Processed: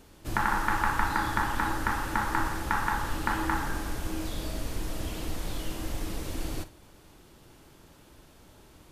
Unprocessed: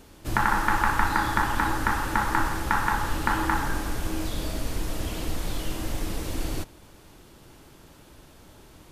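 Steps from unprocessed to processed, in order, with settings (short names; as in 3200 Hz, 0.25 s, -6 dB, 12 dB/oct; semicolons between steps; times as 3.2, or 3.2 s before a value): flutter echo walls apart 8 m, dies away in 0.2 s; gain -4 dB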